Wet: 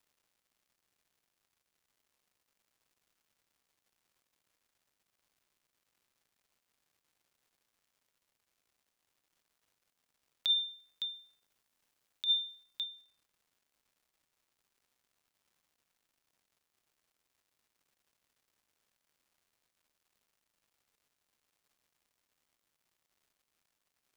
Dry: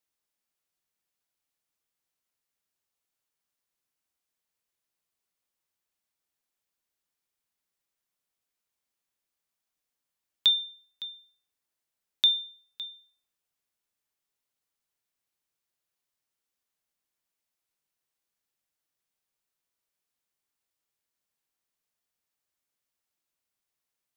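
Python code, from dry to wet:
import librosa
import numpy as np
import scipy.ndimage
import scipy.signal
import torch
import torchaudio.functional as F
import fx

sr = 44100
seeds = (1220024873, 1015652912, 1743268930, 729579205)

y = fx.high_shelf(x, sr, hz=3400.0, db=5.0, at=(10.56, 12.84))
y = fx.over_compress(y, sr, threshold_db=-22.0, ratio=-0.5)
y = fx.dmg_crackle(y, sr, seeds[0], per_s=330.0, level_db=-59.0)
y = F.gain(torch.from_numpy(y), -5.0).numpy()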